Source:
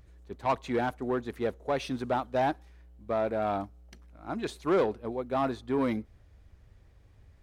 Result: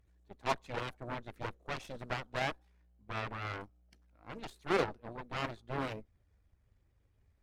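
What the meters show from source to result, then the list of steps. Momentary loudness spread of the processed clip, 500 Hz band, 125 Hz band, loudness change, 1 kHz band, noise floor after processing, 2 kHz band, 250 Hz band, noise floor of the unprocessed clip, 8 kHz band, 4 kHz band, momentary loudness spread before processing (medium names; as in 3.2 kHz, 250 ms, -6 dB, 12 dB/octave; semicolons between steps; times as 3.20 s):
14 LU, -10.5 dB, -3.5 dB, -8.0 dB, -7.5 dB, -72 dBFS, -0.5 dB, -12.0 dB, -58 dBFS, no reading, 0.0 dB, 9 LU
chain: coarse spectral quantiser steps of 15 dB; Chebyshev shaper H 3 -8 dB, 6 -21 dB, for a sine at -17 dBFS; trim +1 dB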